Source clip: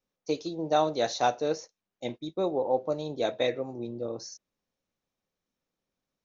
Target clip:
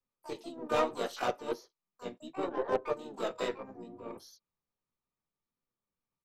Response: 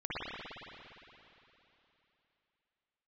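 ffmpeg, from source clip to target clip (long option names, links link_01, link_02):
-filter_complex "[0:a]flanger=delay=7.8:depth=8.9:regen=3:speed=0.71:shape=sinusoidal,equalizer=frequency=1200:width_type=o:width=0.21:gain=13,acrossover=split=240|1100|2800[link_01][link_02][link_03][link_04];[link_01]acompressor=threshold=-60dB:ratio=16[link_05];[link_05][link_02][link_03][link_04]amix=inputs=4:normalize=0,bass=frequency=250:gain=5,treble=frequency=4000:gain=-3,aeval=exprs='0.168*(cos(1*acos(clip(val(0)/0.168,-1,1)))-cos(1*PI/2))+0.0473*(cos(2*acos(clip(val(0)/0.168,-1,1)))-cos(2*PI/2))+0.015*(cos(4*acos(clip(val(0)/0.168,-1,1)))-cos(4*PI/2))+0.00944*(cos(7*acos(clip(val(0)/0.168,-1,1)))-cos(7*PI/2))+0.0015*(cos(8*acos(clip(val(0)/0.168,-1,1)))-cos(8*PI/2))':channel_layout=same,asplit=4[link_06][link_07][link_08][link_09];[link_07]asetrate=33038,aresample=44100,atempo=1.33484,volume=-7dB[link_10];[link_08]asetrate=35002,aresample=44100,atempo=1.25992,volume=-5dB[link_11];[link_09]asetrate=88200,aresample=44100,atempo=0.5,volume=-8dB[link_12];[link_06][link_10][link_11][link_12]amix=inputs=4:normalize=0,volume=-5dB"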